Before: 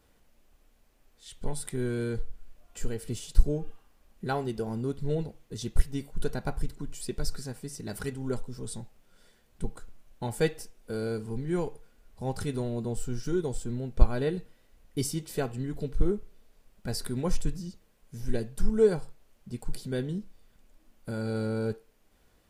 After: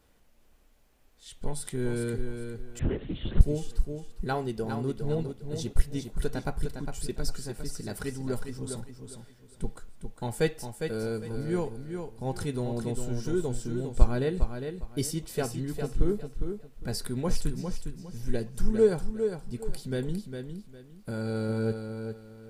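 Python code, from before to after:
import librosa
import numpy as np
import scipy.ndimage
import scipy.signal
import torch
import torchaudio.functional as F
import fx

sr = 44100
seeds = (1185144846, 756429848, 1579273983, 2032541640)

p1 = x + fx.echo_feedback(x, sr, ms=406, feedback_pct=26, wet_db=-7.0, dry=0)
y = fx.lpc_vocoder(p1, sr, seeds[0], excitation='whisper', order=8, at=(2.79, 3.41))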